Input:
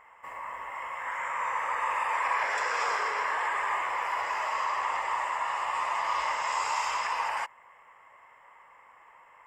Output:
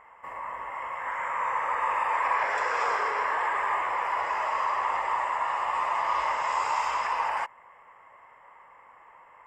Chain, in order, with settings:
high-shelf EQ 2,300 Hz −10.5 dB
level +4.5 dB

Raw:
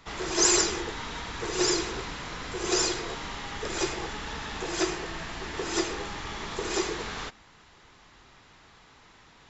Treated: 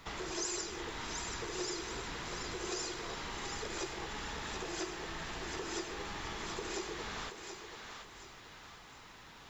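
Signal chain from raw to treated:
downward compressor 3 to 1, threshold −41 dBFS, peak gain reduction 17 dB
bit reduction 12 bits
feedback echo with a high-pass in the loop 730 ms, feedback 42%, high-pass 420 Hz, level −6 dB

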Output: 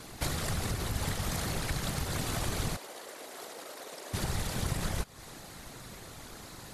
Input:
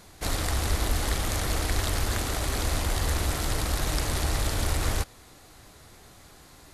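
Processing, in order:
downward compressor 6 to 1, threshold −34 dBFS, peak gain reduction 13 dB
0:02.76–0:04.14: four-pole ladder high-pass 380 Hz, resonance 45%
random phases in short frames
level +4.5 dB

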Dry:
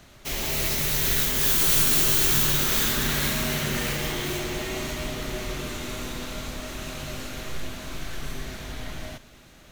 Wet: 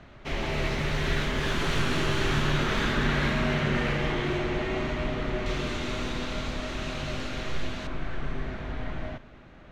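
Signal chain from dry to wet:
low-pass filter 2,300 Hz 12 dB per octave, from 0:05.46 4,200 Hz, from 0:07.87 1,900 Hz
level +2.5 dB

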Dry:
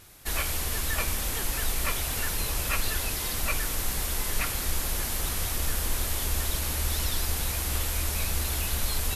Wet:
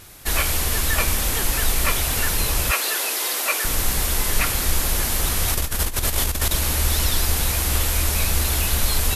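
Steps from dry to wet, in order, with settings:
0:02.71–0:03.65: high-pass filter 350 Hz 24 dB per octave
0:05.48–0:06.53: compressor whose output falls as the input rises −29 dBFS, ratio −0.5
level +8 dB

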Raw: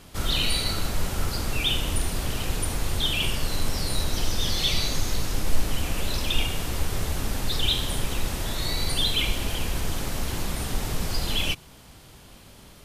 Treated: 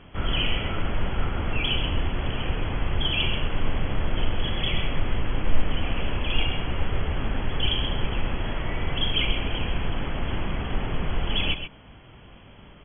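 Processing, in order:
linear-phase brick-wall low-pass 3,400 Hz
single-tap delay 131 ms −9 dB
level +1 dB

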